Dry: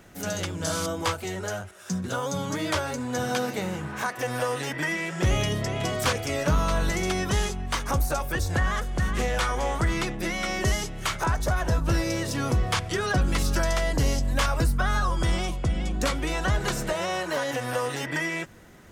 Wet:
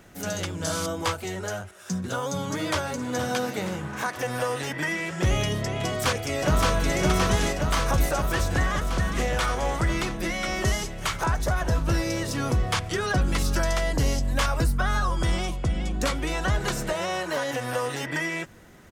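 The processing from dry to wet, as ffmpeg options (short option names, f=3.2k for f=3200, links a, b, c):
-filter_complex "[0:a]asplit=2[a][b];[b]afade=t=in:st=1.99:d=0.01,afade=t=out:st=2.81:d=0.01,aecho=0:1:470|940|1410|1880|2350|2820|3290|3760|4230|4700|5170:0.223872|0.167904|0.125928|0.094446|0.0708345|0.0531259|0.0398444|0.0298833|0.0224125|0.0168094|0.012607[c];[a][c]amix=inputs=2:normalize=0,asplit=2[d][e];[e]afade=t=in:st=5.85:d=0.01,afade=t=out:st=6.95:d=0.01,aecho=0:1:570|1140|1710|2280|2850|3420|3990|4560|5130|5700|6270|6840:0.794328|0.595746|0.44681|0.335107|0.25133|0.188498|0.141373|0.10603|0.0795225|0.0596419|0.0447314|0.0335486[f];[d][f]amix=inputs=2:normalize=0"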